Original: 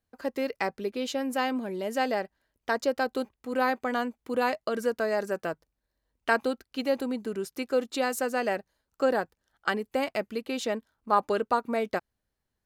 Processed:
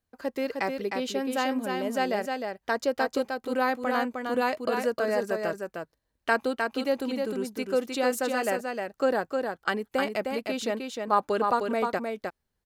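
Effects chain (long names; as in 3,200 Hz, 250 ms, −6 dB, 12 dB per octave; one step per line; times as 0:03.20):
single-tap delay 308 ms −4.5 dB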